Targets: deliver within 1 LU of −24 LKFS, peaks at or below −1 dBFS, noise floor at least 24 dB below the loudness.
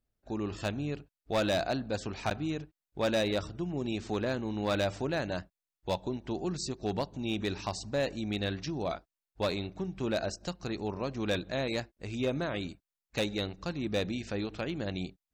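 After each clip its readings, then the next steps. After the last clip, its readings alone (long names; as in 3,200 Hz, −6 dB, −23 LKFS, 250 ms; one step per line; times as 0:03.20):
share of clipped samples 0.9%; peaks flattened at −23.5 dBFS; number of dropouts 1; longest dropout 9.2 ms; integrated loudness −34.0 LKFS; sample peak −23.5 dBFS; target loudness −24.0 LKFS
→ clipped peaks rebuilt −23.5 dBFS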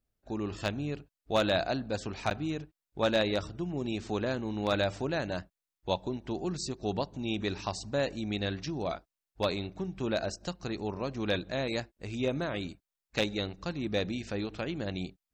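share of clipped samples 0.0%; number of dropouts 1; longest dropout 9.2 ms
→ repair the gap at 0:02.30, 9.2 ms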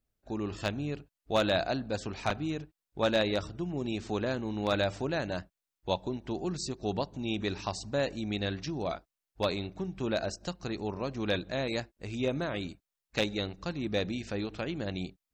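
number of dropouts 0; integrated loudness −33.5 LKFS; sample peak −14.5 dBFS; target loudness −24.0 LKFS
→ level +9.5 dB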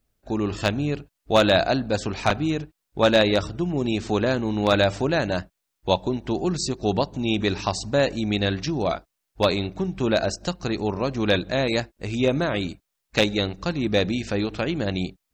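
integrated loudness −24.0 LKFS; sample peak −5.0 dBFS; background noise floor −80 dBFS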